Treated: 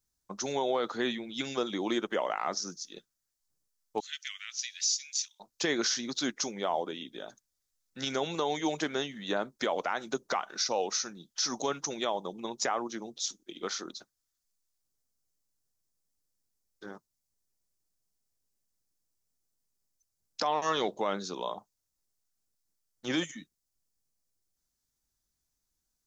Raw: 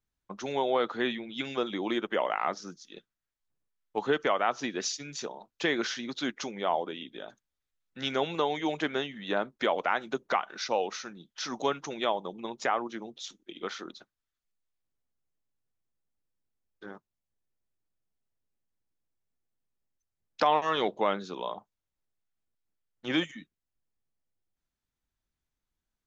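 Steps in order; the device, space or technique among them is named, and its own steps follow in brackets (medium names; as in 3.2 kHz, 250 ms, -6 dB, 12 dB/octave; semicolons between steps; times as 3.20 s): 4.00–5.40 s: steep high-pass 2.1 kHz 36 dB/octave; over-bright horn tweeter (resonant high shelf 4 kHz +9.5 dB, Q 1.5; peak limiter -19 dBFS, peak gain reduction 9.5 dB)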